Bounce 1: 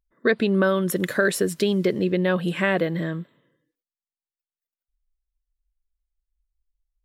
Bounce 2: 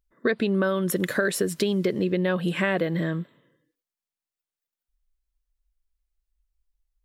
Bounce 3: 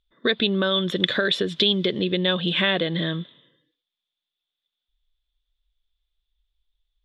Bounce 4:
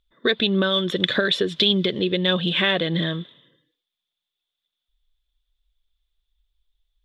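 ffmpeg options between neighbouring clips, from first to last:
-af "acompressor=threshold=0.0631:ratio=2.5,volume=1.26"
-af "lowpass=f=3500:t=q:w=16"
-af "aphaser=in_gain=1:out_gain=1:delay=2.8:decay=0.24:speed=1.7:type=triangular,volume=1.12"

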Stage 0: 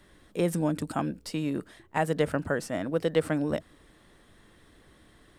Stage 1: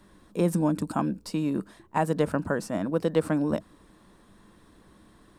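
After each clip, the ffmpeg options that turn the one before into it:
-af "equalizer=f=200:t=o:w=0.33:g=9,equalizer=f=315:t=o:w=0.33:g=3,equalizer=f=1000:t=o:w=0.33:g=7,equalizer=f=2000:t=o:w=0.33:g=-6,equalizer=f=3150:t=o:w=0.33:g=-5"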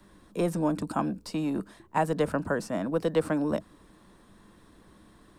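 -filter_complex "[0:a]acrossover=split=320|510|6400[s0][s1][s2][s3];[s0]asoftclip=type=tanh:threshold=0.0335[s4];[s3]alimiter=level_in=5.62:limit=0.0631:level=0:latency=1:release=160,volume=0.178[s5];[s4][s1][s2][s5]amix=inputs=4:normalize=0"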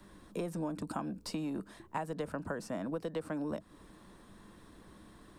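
-af "acompressor=threshold=0.0178:ratio=5"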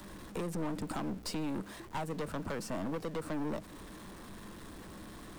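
-af "aeval=exprs='val(0)+0.5*0.00316*sgn(val(0))':c=same,aeval=exprs='(tanh(79.4*val(0)+0.65)-tanh(0.65))/79.4':c=same,volume=1.88"

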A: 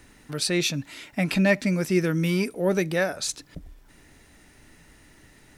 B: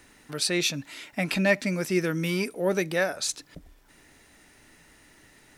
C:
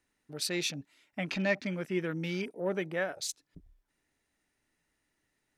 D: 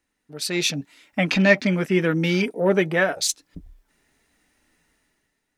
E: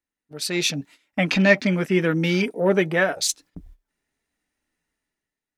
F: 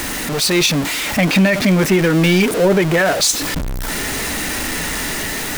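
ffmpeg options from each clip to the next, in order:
-af "lowshelf=f=220:g=-8.5"
-af "afwtdn=0.0126,volume=0.447"
-af "dynaudnorm=f=110:g=11:m=3.76,flanger=delay=3.6:depth=1.3:regen=-57:speed=0.87:shape=triangular,volume=2"
-af "agate=range=0.2:threshold=0.00562:ratio=16:detection=peak"
-af "aeval=exprs='val(0)+0.5*0.0891*sgn(val(0))':c=same,alimiter=level_in=3.16:limit=0.891:release=50:level=0:latency=1,volume=0.596"

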